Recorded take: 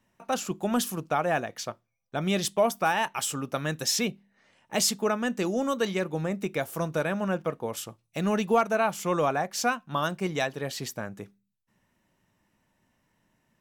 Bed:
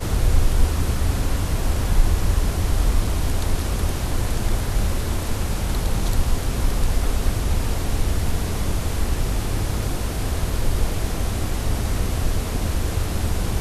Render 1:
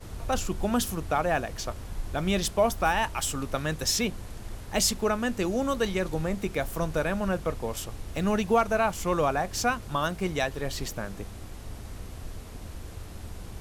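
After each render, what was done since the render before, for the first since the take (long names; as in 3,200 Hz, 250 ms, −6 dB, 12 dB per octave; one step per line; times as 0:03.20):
mix in bed −17.5 dB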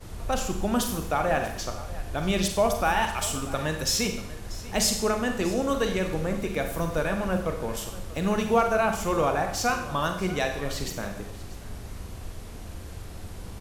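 single-tap delay 638 ms −18 dB
four-comb reverb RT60 0.69 s, combs from 32 ms, DRR 4.5 dB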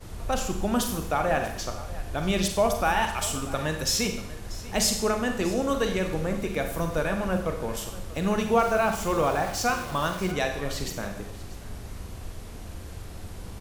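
0:08.59–0:10.32: centre clipping without the shift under −35.5 dBFS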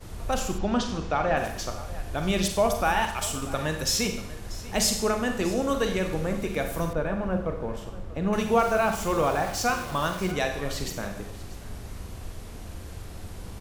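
0:00.58–0:01.37: low-pass filter 5,700 Hz 24 dB per octave
0:03.00–0:03.42: mu-law and A-law mismatch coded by A
0:06.93–0:08.33: low-pass filter 1,100 Hz 6 dB per octave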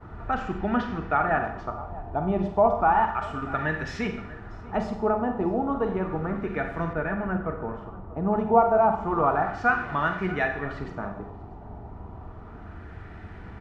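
notch comb filter 540 Hz
auto-filter low-pass sine 0.32 Hz 880–1,800 Hz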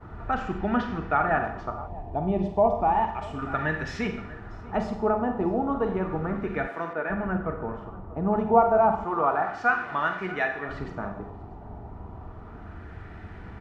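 0:01.87–0:03.39: parametric band 1,400 Hz −14.5 dB 0.51 octaves
0:06.67–0:07.10: high-pass filter 340 Hz
0:09.04–0:10.69: high-pass filter 380 Hz 6 dB per octave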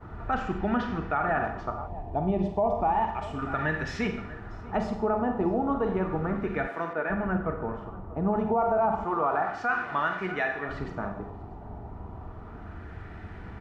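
brickwall limiter −17 dBFS, peak gain reduction 10 dB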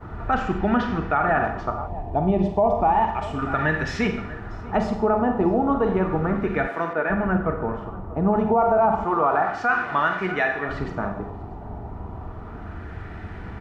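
level +6 dB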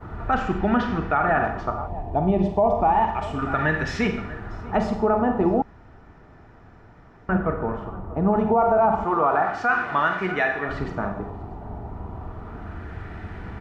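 0:05.62–0:07.29: fill with room tone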